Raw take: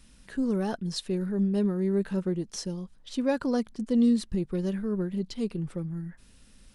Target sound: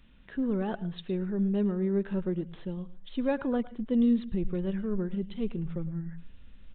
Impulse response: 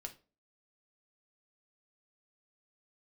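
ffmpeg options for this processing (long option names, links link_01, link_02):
-filter_complex "[0:a]asplit=2[link_01][link_02];[link_02]asubboost=boost=11:cutoff=99[link_03];[1:a]atrim=start_sample=2205,adelay=107[link_04];[link_03][link_04]afir=irnorm=-1:irlink=0,volume=-11.5dB[link_05];[link_01][link_05]amix=inputs=2:normalize=0,aresample=8000,aresample=44100,volume=-2dB"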